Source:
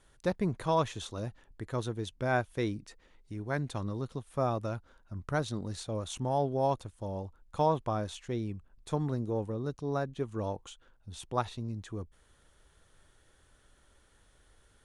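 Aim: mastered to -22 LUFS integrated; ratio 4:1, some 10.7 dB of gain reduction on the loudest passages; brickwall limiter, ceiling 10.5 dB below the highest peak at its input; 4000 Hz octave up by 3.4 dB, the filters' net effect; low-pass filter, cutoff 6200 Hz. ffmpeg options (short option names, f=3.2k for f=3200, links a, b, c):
-af "lowpass=6.2k,equalizer=f=4k:t=o:g=4.5,acompressor=threshold=-36dB:ratio=4,volume=22.5dB,alimiter=limit=-11.5dB:level=0:latency=1"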